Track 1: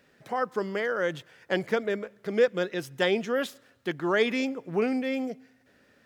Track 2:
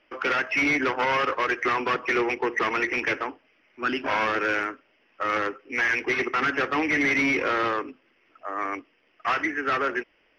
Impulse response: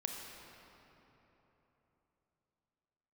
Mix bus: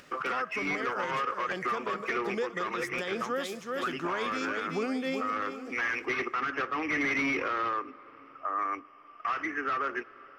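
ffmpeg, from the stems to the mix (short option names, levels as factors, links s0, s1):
-filter_complex "[0:a]equalizer=f=6500:w=0.71:g=7.5,volume=1.12,asplit=2[s0][s1];[s1]volume=0.355[s2];[1:a]volume=0.75,asplit=2[s3][s4];[s4]volume=0.106[s5];[2:a]atrim=start_sample=2205[s6];[s5][s6]afir=irnorm=-1:irlink=0[s7];[s2]aecho=0:1:379|758|1137|1516|1895:1|0.35|0.122|0.0429|0.015[s8];[s0][s3][s7][s8]amix=inputs=4:normalize=0,equalizer=f=1200:t=o:w=0.29:g=10,acompressor=mode=upward:threshold=0.00316:ratio=2.5,alimiter=limit=0.075:level=0:latency=1:release=391"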